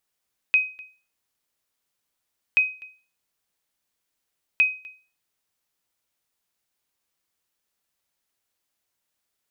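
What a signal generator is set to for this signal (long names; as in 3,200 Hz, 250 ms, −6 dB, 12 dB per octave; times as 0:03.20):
ping with an echo 2,520 Hz, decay 0.36 s, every 2.03 s, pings 3, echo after 0.25 s, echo −24 dB −11 dBFS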